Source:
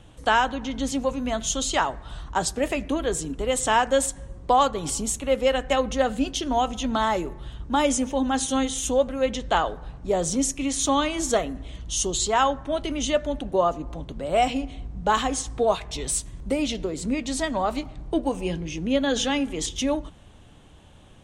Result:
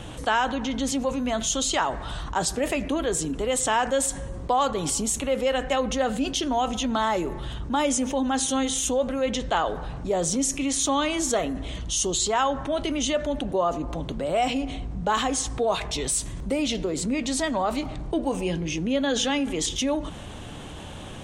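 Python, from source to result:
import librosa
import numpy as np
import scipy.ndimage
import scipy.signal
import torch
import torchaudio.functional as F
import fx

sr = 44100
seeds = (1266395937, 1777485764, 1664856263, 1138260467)

y = fx.low_shelf(x, sr, hz=87.0, db=-7.0)
y = fx.env_flatten(y, sr, amount_pct=50)
y = y * librosa.db_to_amplitude(-4.0)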